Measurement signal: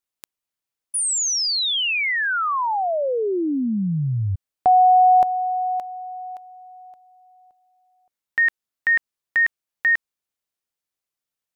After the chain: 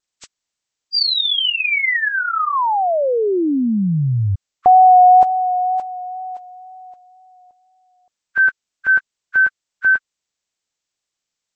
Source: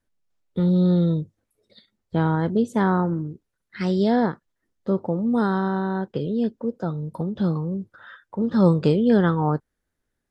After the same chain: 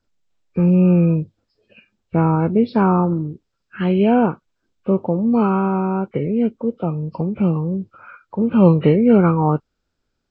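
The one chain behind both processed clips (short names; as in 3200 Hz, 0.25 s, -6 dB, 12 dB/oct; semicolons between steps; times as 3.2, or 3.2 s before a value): nonlinear frequency compression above 1100 Hz 1.5:1; wow and flutter 20 cents; gain +5 dB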